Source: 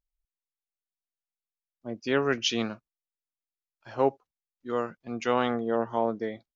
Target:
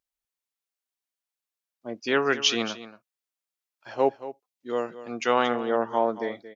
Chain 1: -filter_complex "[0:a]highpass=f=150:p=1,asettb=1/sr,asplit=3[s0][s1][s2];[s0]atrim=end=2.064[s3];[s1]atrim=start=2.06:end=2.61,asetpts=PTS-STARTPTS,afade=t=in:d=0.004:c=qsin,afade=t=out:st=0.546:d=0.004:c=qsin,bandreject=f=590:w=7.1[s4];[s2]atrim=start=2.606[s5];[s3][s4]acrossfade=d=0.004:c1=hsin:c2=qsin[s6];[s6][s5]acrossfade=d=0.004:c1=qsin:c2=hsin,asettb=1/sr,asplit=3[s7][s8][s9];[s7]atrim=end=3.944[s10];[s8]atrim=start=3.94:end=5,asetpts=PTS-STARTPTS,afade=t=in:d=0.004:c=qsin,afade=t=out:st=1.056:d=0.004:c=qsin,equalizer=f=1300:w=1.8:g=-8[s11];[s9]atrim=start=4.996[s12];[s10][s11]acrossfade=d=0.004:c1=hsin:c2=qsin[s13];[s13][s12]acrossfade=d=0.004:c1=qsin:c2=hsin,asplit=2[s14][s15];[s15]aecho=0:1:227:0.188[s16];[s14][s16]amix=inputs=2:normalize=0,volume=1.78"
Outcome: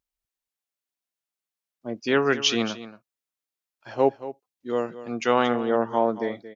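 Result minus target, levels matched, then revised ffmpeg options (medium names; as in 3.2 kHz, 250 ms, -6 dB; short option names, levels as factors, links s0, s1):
125 Hz band +5.0 dB
-filter_complex "[0:a]highpass=f=420:p=1,asettb=1/sr,asplit=3[s0][s1][s2];[s0]atrim=end=2.064[s3];[s1]atrim=start=2.06:end=2.61,asetpts=PTS-STARTPTS,afade=t=in:d=0.004:c=qsin,afade=t=out:st=0.546:d=0.004:c=qsin,bandreject=f=590:w=7.1[s4];[s2]atrim=start=2.606[s5];[s3][s4]acrossfade=d=0.004:c1=hsin:c2=qsin[s6];[s6][s5]acrossfade=d=0.004:c1=qsin:c2=hsin,asettb=1/sr,asplit=3[s7][s8][s9];[s7]atrim=end=3.944[s10];[s8]atrim=start=3.94:end=5,asetpts=PTS-STARTPTS,afade=t=in:d=0.004:c=qsin,afade=t=out:st=1.056:d=0.004:c=qsin,equalizer=f=1300:w=1.8:g=-8[s11];[s9]atrim=start=4.996[s12];[s10][s11]acrossfade=d=0.004:c1=hsin:c2=qsin[s13];[s13][s12]acrossfade=d=0.004:c1=qsin:c2=hsin,asplit=2[s14][s15];[s15]aecho=0:1:227:0.188[s16];[s14][s16]amix=inputs=2:normalize=0,volume=1.78"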